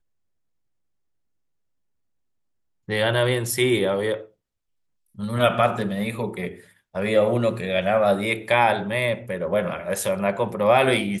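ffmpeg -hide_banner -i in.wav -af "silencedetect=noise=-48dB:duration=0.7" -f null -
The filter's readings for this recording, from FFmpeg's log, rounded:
silence_start: 0.00
silence_end: 2.88 | silence_duration: 2.88
silence_start: 4.29
silence_end: 5.15 | silence_duration: 0.85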